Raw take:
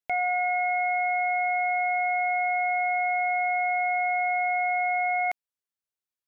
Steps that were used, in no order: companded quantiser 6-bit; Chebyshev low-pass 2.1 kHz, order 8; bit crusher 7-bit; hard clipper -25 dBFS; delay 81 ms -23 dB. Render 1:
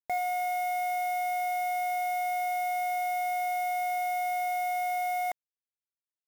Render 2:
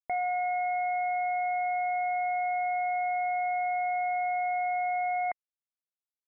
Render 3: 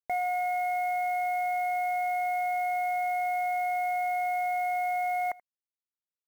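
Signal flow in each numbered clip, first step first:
hard clipper > delay > companded quantiser > Chebyshev low-pass > bit crusher; delay > companded quantiser > bit crusher > hard clipper > Chebyshev low-pass; hard clipper > bit crusher > Chebyshev low-pass > companded quantiser > delay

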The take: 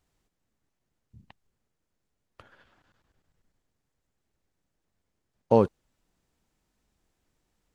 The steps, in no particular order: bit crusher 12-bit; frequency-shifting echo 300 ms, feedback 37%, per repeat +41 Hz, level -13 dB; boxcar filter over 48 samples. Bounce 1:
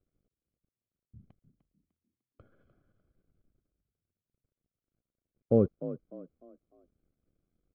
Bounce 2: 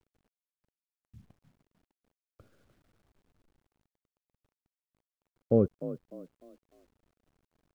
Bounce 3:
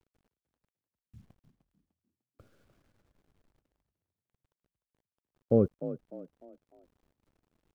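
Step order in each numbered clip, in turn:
bit crusher > frequency-shifting echo > boxcar filter; frequency-shifting echo > boxcar filter > bit crusher; boxcar filter > bit crusher > frequency-shifting echo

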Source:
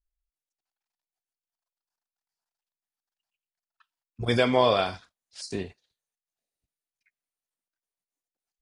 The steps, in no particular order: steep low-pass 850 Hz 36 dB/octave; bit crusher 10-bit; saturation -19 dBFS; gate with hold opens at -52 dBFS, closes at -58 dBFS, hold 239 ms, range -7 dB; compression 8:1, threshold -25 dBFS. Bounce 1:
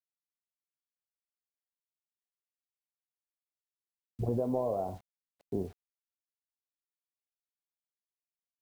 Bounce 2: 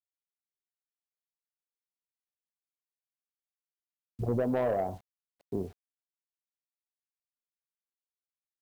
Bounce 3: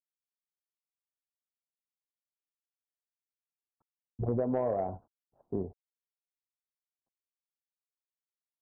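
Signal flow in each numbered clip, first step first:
compression > saturation > steep low-pass > bit crusher > gate with hold; steep low-pass > saturation > compression > bit crusher > gate with hold; bit crusher > gate with hold > steep low-pass > compression > saturation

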